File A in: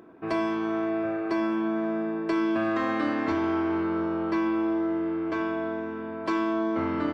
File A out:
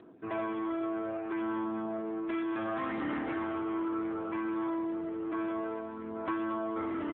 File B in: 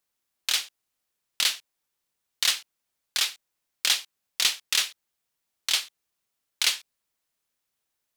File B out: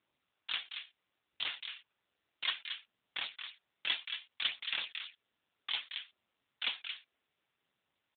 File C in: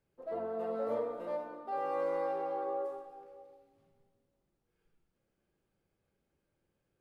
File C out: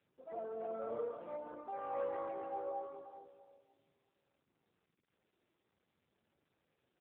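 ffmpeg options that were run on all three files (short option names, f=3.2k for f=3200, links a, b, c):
-filter_complex "[0:a]aphaser=in_gain=1:out_gain=1:delay=3:decay=0.38:speed=0.64:type=sinusoidal,acrossover=split=830[a][b];[a]volume=26.5dB,asoftclip=hard,volume=-26.5dB[c];[b]aecho=1:1:225:0.447[d];[c][d]amix=inputs=2:normalize=0,volume=-5.5dB" -ar 8000 -c:a libopencore_amrnb -b:a 7400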